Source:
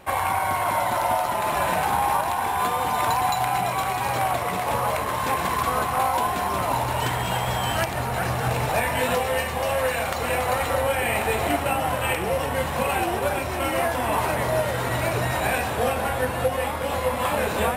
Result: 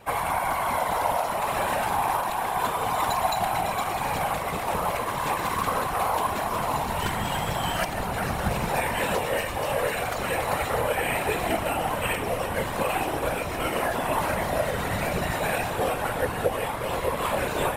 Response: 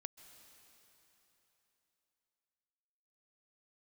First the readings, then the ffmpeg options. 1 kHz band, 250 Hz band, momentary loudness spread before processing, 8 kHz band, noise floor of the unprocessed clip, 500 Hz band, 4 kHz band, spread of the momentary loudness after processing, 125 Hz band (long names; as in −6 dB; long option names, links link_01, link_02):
−3.0 dB, −1.5 dB, 2 LU, −2.5 dB, −28 dBFS, −2.5 dB, −2.5 dB, 3 LU, −4.0 dB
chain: -af "afftfilt=real='hypot(re,im)*cos(2*PI*random(0))':imag='hypot(re,im)*sin(2*PI*random(1))':win_size=512:overlap=0.75,acontrast=52,volume=-2.5dB"